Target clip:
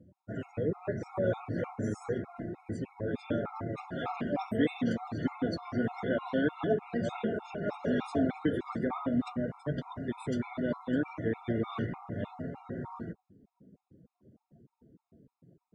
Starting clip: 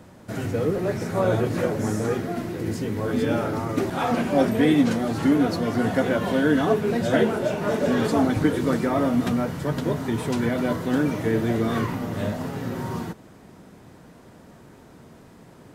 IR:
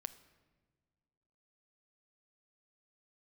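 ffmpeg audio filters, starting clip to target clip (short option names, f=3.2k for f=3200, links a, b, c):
-af "afftdn=nr=26:nf=-41,equalizer=f=13k:w=2.8:g=-11.5,afftfilt=real='re*gt(sin(2*PI*3.3*pts/sr)*(1-2*mod(floor(b*sr/1024/700),2)),0)':imag='im*gt(sin(2*PI*3.3*pts/sr)*(1-2*mod(floor(b*sr/1024/700),2)),0)':win_size=1024:overlap=0.75,volume=-7dB"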